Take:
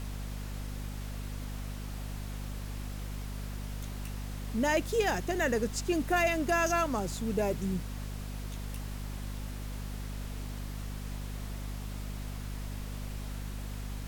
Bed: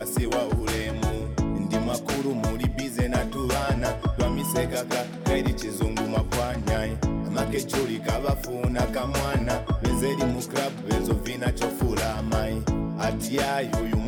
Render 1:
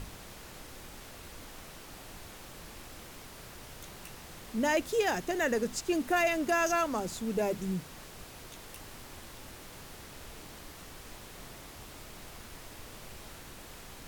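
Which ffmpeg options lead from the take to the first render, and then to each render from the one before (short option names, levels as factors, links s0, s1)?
-af "bandreject=f=50:t=h:w=6,bandreject=f=100:t=h:w=6,bandreject=f=150:t=h:w=6,bandreject=f=200:t=h:w=6,bandreject=f=250:t=h:w=6"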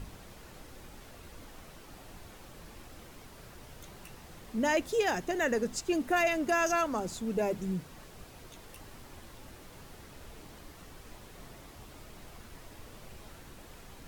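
-af "afftdn=nr=6:nf=-49"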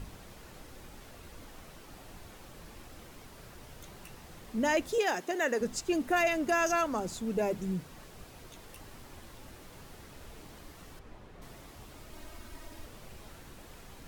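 -filter_complex "[0:a]asettb=1/sr,asplit=3[s0][s1][s2];[s0]atrim=end=4.984[s3];[s1]atrim=start=4.98:end=5.61,asetpts=PTS-STARTPTS,afade=t=in:d=0.004:c=qsin,afade=t=out:st=0.626:d=0.004:c=qsin,highpass=280[s4];[s2]atrim=start=5.606[s5];[s3][s4]acrossfade=d=0.004:c1=hsin:c2=qsin[s6];[s6][s5]acrossfade=d=0.004:c1=qsin:c2=hsin,asettb=1/sr,asplit=3[s7][s8][s9];[s7]atrim=end=10.994[s10];[s8]atrim=start=10.99:end=11.42,asetpts=PTS-STARTPTS,afade=t=in:d=0.004:c=qsin,afade=t=out:st=0.426:d=0.004:c=qsin,lowpass=f=1600:p=1[s11];[s9]atrim=start=11.416[s12];[s10][s11]acrossfade=d=0.004:c1=hsin:c2=qsin[s13];[s13][s12]acrossfade=d=0.004:c1=qsin:c2=hsin,asettb=1/sr,asplit=3[s14][s15][s16];[s14]atrim=end=12.114[s17];[s15]atrim=start=12.11:end=12.86,asetpts=PTS-STARTPTS,afade=t=in:d=0.004:c=qsin,afade=t=out:st=0.746:d=0.004:c=qsin,aecho=1:1:3.2:0.65,atrim=end_sample=33075[s18];[s16]atrim=start=12.856[s19];[s17][s18]acrossfade=d=0.004:c1=hsin:c2=qsin[s20];[s20][s19]acrossfade=d=0.004:c1=qsin:c2=hsin"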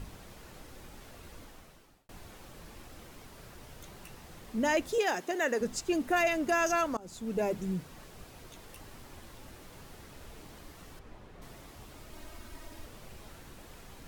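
-filter_complex "[0:a]asplit=3[s0][s1][s2];[s0]atrim=end=2.09,asetpts=PTS-STARTPTS,afade=t=out:st=1.36:d=0.73[s3];[s1]atrim=start=2.09:end=6.97,asetpts=PTS-STARTPTS,afade=t=in:d=0.004:c=hsin,afade=t=out:st=4.876:d=0.004:c=hsin:silence=0.0707946[s4];[s2]atrim=start=6.97,asetpts=PTS-STARTPTS,afade=t=in:d=0.55:c=qsin:silence=0.0707946[s5];[s3][s4][s5]concat=n=3:v=0:a=1"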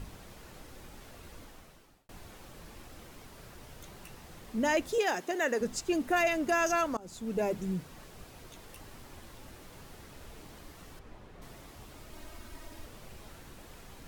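-af anull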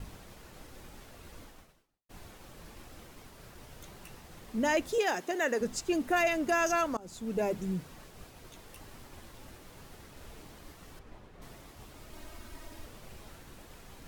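-af "agate=range=0.0224:threshold=0.00398:ratio=3:detection=peak"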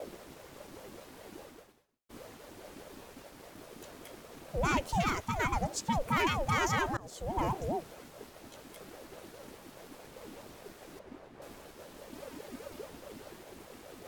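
-af "aeval=exprs='0.158*(cos(1*acos(clip(val(0)/0.158,-1,1)))-cos(1*PI/2))+0.0126*(cos(5*acos(clip(val(0)/0.158,-1,1)))-cos(5*PI/2))':c=same,aeval=exprs='val(0)*sin(2*PI*420*n/s+420*0.4/4.9*sin(2*PI*4.9*n/s))':c=same"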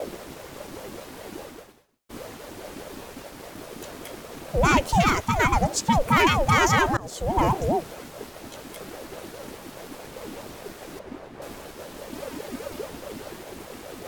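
-af "volume=3.35"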